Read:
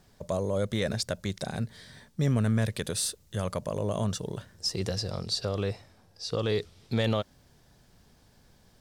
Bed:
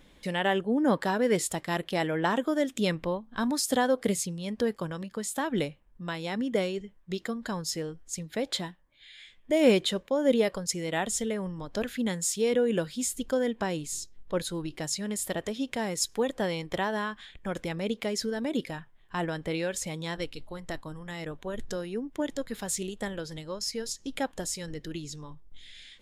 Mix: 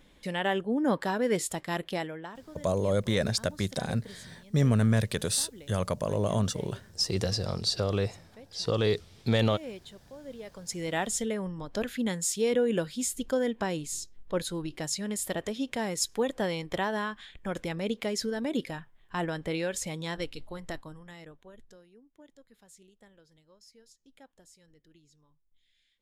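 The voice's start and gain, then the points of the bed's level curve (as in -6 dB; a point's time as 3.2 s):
2.35 s, +2.0 dB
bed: 1.93 s -2 dB
2.38 s -20 dB
10.38 s -20 dB
10.82 s -0.5 dB
20.66 s -0.5 dB
21.94 s -24 dB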